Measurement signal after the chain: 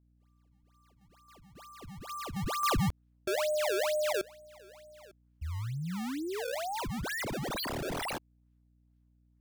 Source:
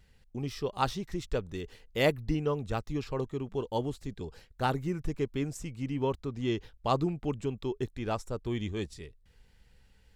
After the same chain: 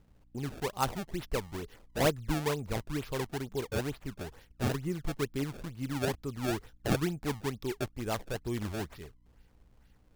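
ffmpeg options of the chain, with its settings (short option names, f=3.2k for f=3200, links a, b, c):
-af "acrusher=samples=25:mix=1:aa=0.000001:lfo=1:lforange=40:lforate=2.2,aeval=exprs='val(0)+0.000631*(sin(2*PI*60*n/s)+sin(2*PI*2*60*n/s)/2+sin(2*PI*3*60*n/s)/3+sin(2*PI*4*60*n/s)/4+sin(2*PI*5*60*n/s)/5)':c=same,volume=-1.5dB"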